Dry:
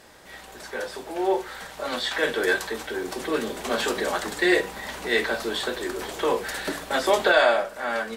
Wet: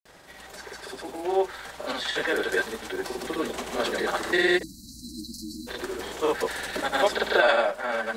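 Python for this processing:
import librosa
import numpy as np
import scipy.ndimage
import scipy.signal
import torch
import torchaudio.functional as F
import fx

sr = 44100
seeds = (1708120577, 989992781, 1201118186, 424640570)

y = fx.spec_erase(x, sr, start_s=4.58, length_s=1.16, low_hz=330.0, high_hz=3900.0)
y = fx.granulator(y, sr, seeds[0], grain_ms=100.0, per_s=20.0, spray_ms=100.0, spread_st=0)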